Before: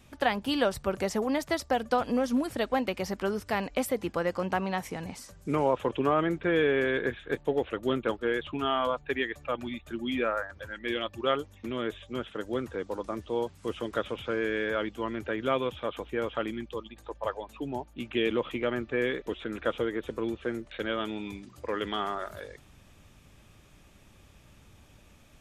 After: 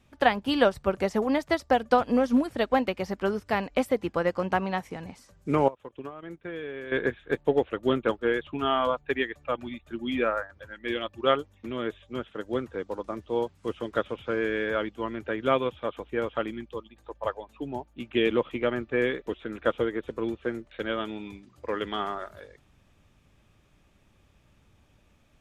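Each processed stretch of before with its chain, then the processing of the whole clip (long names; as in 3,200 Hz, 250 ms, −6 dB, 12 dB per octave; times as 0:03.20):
0:05.68–0:06.92: high-shelf EQ 4,700 Hz +6 dB + downward compressor 12 to 1, threshold −31 dBFS + noise gate −37 dBFS, range −15 dB
whole clip: high-shelf EQ 5,500 Hz −7.5 dB; expander for the loud parts 1.5 to 1, over −45 dBFS; level +6 dB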